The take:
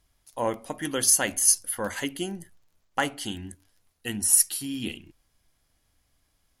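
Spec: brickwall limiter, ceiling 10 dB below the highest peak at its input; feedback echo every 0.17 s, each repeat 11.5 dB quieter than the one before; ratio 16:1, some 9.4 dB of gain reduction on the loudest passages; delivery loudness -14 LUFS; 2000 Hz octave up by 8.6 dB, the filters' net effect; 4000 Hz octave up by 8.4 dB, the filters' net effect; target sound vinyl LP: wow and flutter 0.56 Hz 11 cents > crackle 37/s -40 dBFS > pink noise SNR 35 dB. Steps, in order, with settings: bell 2000 Hz +8.5 dB; bell 4000 Hz +9 dB; compressor 16:1, threshold -22 dBFS; limiter -17 dBFS; feedback echo 0.17 s, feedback 27%, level -11.5 dB; wow and flutter 0.56 Hz 11 cents; crackle 37/s -40 dBFS; pink noise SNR 35 dB; gain +15.5 dB

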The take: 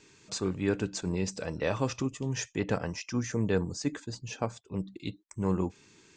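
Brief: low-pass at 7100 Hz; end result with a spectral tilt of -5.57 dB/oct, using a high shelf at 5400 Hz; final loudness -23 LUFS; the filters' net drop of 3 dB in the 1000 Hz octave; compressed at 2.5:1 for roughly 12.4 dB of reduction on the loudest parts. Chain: LPF 7100 Hz; bell 1000 Hz -3.5 dB; high shelf 5400 Hz -7 dB; compressor 2.5:1, threshold -43 dBFS; gain +21 dB

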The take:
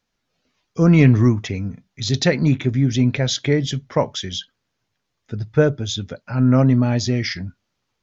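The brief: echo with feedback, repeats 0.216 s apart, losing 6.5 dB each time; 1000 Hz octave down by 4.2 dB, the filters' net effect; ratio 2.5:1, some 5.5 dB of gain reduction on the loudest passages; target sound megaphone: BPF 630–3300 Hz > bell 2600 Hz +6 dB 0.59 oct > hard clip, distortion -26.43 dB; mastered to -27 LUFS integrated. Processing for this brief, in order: bell 1000 Hz -4.5 dB; compressor 2.5:1, threshold -17 dBFS; BPF 630–3300 Hz; bell 2600 Hz +6 dB 0.59 oct; feedback echo 0.216 s, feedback 47%, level -6.5 dB; hard clip -15.5 dBFS; gain +3 dB

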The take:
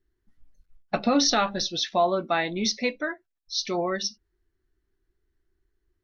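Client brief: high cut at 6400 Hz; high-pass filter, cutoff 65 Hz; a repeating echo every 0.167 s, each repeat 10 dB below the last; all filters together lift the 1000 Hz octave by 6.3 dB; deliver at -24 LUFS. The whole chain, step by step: HPF 65 Hz; LPF 6400 Hz; bell 1000 Hz +9 dB; feedback echo 0.167 s, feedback 32%, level -10 dB; gain -1.5 dB

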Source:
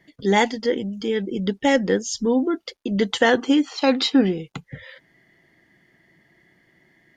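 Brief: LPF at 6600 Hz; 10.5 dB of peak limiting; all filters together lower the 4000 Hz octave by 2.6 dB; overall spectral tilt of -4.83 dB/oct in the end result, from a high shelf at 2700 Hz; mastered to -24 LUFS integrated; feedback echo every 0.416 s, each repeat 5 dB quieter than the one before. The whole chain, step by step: LPF 6600 Hz; high shelf 2700 Hz +4 dB; bell 4000 Hz -6 dB; limiter -14.5 dBFS; feedback echo 0.416 s, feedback 56%, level -5 dB

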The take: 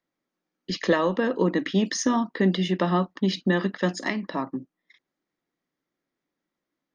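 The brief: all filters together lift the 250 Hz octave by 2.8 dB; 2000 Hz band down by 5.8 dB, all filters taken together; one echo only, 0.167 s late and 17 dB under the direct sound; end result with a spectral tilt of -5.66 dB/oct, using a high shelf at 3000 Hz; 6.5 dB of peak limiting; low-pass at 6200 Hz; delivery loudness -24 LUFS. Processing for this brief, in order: LPF 6200 Hz; bell 250 Hz +4 dB; bell 2000 Hz -8 dB; high shelf 3000 Hz +4 dB; limiter -15 dBFS; echo 0.167 s -17 dB; gain +2 dB

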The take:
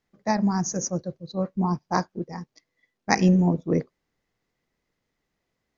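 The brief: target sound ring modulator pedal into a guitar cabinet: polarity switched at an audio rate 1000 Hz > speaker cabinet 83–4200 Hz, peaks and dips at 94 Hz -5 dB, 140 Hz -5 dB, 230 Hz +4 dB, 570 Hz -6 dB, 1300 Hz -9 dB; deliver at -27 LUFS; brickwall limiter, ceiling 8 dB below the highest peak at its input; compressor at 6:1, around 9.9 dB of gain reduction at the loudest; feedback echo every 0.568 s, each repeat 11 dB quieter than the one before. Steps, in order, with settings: compressor 6:1, threshold -25 dBFS; limiter -21 dBFS; feedback echo 0.568 s, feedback 28%, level -11 dB; polarity switched at an audio rate 1000 Hz; speaker cabinet 83–4200 Hz, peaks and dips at 94 Hz -5 dB, 140 Hz -5 dB, 230 Hz +4 dB, 570 Hz -6 dB, 1300 Hz -9 dB; gain +7.5 dB

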